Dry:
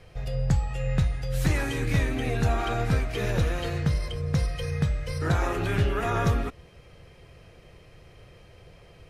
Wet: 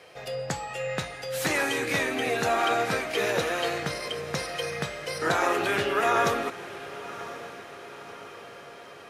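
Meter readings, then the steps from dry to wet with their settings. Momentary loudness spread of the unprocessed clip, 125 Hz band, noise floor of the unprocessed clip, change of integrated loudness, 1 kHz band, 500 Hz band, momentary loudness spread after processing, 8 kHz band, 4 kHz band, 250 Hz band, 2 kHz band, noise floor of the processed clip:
4 LU, −14.5 dB, −52 dBFS, −0.5 dB, +6.0 dB, +4.5 dB, 18 LU, +6.0 dB, +6.0 dB, −3.5 dB, +6.0 dB, −46 dBFS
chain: high-pass filter 400 Hz 12 dB per octave
feedback delay with all-pass diffusion 1,047 ms, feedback 56%, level −14.5 dB
level +6 dB

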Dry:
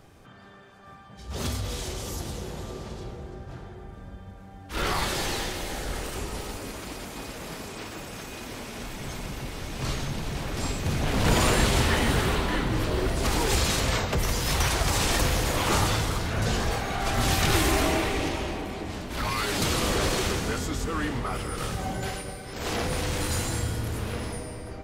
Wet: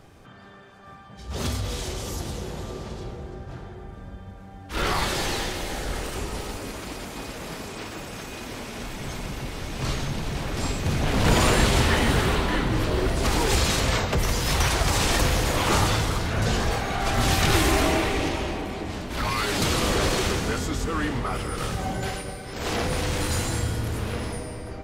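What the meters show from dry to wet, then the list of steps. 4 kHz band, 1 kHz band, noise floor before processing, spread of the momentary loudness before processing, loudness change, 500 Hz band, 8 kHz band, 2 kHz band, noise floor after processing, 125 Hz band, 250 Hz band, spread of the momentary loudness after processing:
+2.0 dB, +2.5 dB, −46 dBFS, 14 LU, +2.0 dB, +2.5 dB, +1.0 dB, +2.5 dB, −44 dBFS, +2.5 dB, +2.5 dB, 15 LU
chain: high-shelf EQ 9,300 Hz −4 dB
level +2.5 dB

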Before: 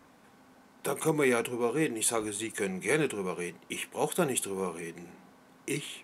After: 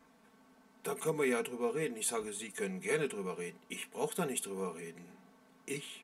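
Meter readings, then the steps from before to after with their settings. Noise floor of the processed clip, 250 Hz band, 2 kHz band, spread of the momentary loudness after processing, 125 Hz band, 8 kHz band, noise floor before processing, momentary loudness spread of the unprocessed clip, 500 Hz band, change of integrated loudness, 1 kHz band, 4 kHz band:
−65 dBFS, −7.5 dB, −6.5 dB, 11 LU, −7.0 dB, −6.5 dB, −59 dBFS, 11 LU, −5.0 dB, −6.0 dB, −6.5 dB, −6.0 dB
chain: comb filter 4.5 ms, depth 71%
level −8 dB

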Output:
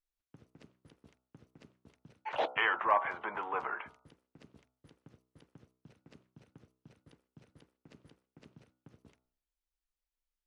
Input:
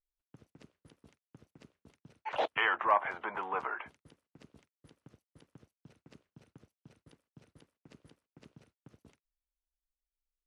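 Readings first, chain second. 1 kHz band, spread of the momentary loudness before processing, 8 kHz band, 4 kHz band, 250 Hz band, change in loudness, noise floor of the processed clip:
−0.5 dB, 14 LU, can't be measured, −0.5 dB, −0.5 dB, −0.5 dB, below −85 dBFS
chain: high-shelf EQ 8,700 Hz −8 dB
hum removal 63.23 Hz, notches 23

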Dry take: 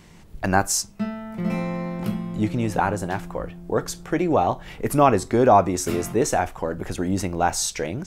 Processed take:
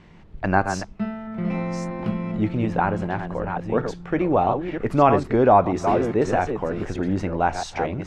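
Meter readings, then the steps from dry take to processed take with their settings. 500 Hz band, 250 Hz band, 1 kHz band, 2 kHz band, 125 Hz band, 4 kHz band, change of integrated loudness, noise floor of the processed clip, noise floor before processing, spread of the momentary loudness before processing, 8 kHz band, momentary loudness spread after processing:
+1.0 dB, +0.5 dB, +0.5 dB, 0.0 dB, +1.0 dB, −7.5 dB, +0.5 dB, −47 dBFS, −47 dBFS, 11 LU, below −15 dB, 10 LU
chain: delay that plays each chunk backwards 636 ms, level −7 dB
low-pass filter 2,900 Hz 12 dB per octave

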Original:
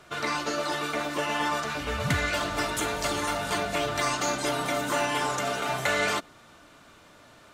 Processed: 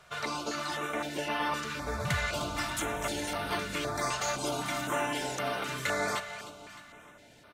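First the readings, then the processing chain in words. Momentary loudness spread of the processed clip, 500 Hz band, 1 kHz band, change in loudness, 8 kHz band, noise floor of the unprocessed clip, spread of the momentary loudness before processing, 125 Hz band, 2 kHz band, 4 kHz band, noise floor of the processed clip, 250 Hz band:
6 LU, −5.0 dB, −5.0 dB, −5.0 dB, −4.0 dB, −54 dBFS, 3 LU, −4.0 dB, −5.0 dB, −5.0 dB, −56 dBFS, −4.5 dB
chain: repeating echo 306 ms, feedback 51%, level −12 dB
notch on a step sequencer 3.9 Hz 300–7,200 Hz
level −3.5 dB

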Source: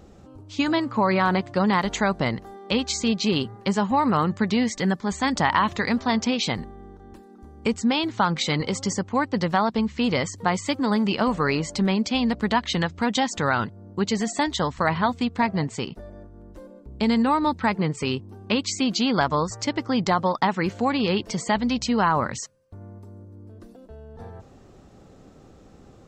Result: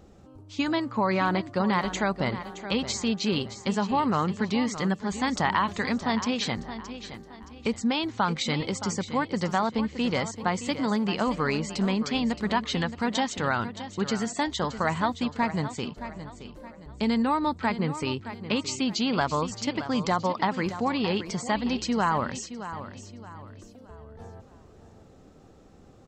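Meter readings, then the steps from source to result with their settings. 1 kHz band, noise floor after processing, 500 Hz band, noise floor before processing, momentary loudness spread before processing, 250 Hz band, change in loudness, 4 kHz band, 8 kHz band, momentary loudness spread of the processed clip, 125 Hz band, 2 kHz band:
−3.5 dB, −52 dBFS, −3.5 dB, −50 dBFS, 7 LU, −3.5 dB, −4.0 dB, −3.5 dB, −3.5 dB, 14 LU, −3.5 dB, −3.5 dB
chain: repeating echo 620 ms, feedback 36%, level −12 dB
level −4 dB

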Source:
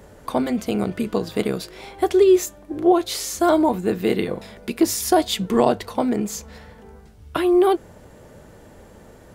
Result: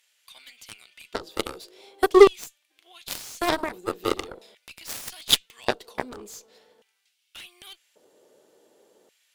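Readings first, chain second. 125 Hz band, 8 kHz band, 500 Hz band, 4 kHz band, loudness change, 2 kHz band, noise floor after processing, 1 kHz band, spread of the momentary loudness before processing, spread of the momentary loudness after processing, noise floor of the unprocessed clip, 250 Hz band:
−14.0 dB, −6.0 dB, −4.0 dB, +2.0 dB, −3.0 dB, +0.5 dB, −72 dBFS, −6.5 dB, 12 LU, 27 LU, −47 dBFS, −11.5 dB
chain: high shelf with overshoot 2,500 Hz +7 dB, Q 1.5
auto-filter high-pass square 0.44 Hz 390–2,300 Hz
harmonic generator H 4 −23 dB, 7 −15 dB, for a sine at 3 dBFS
level −4 dB

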